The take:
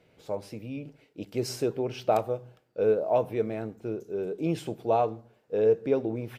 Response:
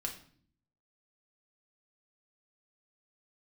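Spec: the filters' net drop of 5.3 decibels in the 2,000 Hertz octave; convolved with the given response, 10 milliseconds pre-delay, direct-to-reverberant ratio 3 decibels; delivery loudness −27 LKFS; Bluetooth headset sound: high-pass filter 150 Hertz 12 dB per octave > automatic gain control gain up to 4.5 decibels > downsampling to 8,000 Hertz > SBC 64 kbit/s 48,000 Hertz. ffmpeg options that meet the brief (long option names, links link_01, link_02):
-filter_complex "[0:a]equalizer=frequency=2000:width_type=o:gain=-7.5,asplit=2[link_01][link_02];[1:a]atrim=start_sample=2205,adelay=10[link_03];[link_02][link_03]afir=irnorm=-1:irlink=0,volume=-3.5dB[link_04];[link_01][link_04]amix=inputs=2:normalize=0,highpass=150,dynaudnorm=maxgain=4.5dB,aresample=8000,aresample=44100,volume=1.5dB" -ar 48000 -c:a sbc -b:a 64k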